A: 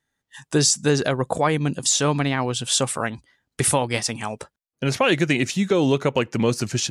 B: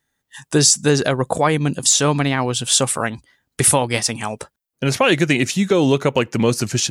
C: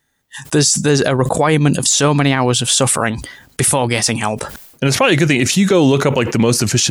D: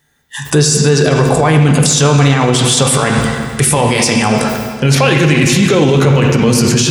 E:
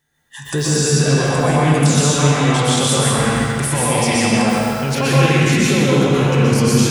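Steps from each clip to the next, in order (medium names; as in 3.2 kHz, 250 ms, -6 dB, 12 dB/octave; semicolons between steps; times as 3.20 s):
treble shelf 12 kHz +10.5 dB; trim +3.5 dB
peak limiter -10.5 dBFS, peak gain reduction 8.5 dB; decay stretcher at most 77 dB/s; trim +6.5 dB
reverberation RT60 1.9 s, pre-delay 3 ms, DRR 1 dB; loudness maximiser +7 dB; trim -1 dB
plate-style reverb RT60 1.6 s, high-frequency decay 0.75×, pre-delay 110 ms, DRR -5.5 dB; trim -10.5 dB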